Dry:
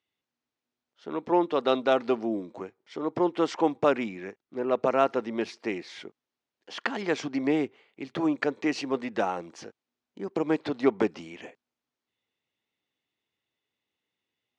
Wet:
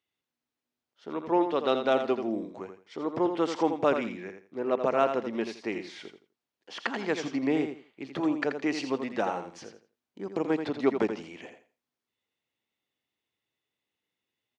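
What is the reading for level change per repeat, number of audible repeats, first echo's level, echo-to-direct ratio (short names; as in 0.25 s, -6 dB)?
-13.0 dB, 3, -8.0 dB, -8.0 dB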